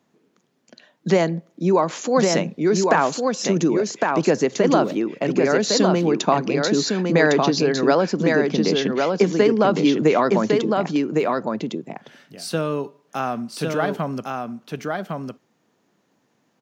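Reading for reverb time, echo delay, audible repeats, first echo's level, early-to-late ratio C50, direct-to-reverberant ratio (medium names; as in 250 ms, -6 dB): no reverb, 1107 ms, 1, -3.5 dB, no reverb, no reverb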